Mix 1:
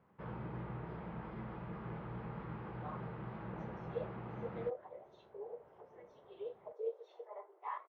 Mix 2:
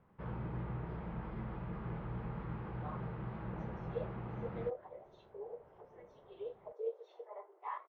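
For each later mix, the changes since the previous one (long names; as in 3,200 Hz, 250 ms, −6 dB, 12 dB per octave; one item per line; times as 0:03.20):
master: remove high-pass filter 150 Hz 6 dB per octave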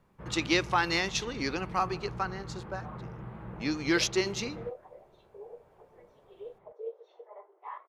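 speech: unmuted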